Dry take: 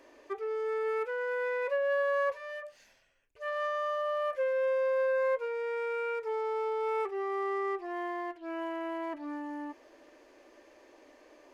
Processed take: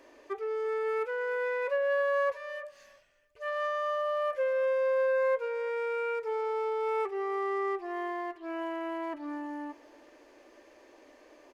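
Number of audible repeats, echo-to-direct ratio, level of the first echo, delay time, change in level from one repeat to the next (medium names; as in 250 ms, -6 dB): 2, -22.5 dB, -23.0 dB, 336 ms, -10.0 dB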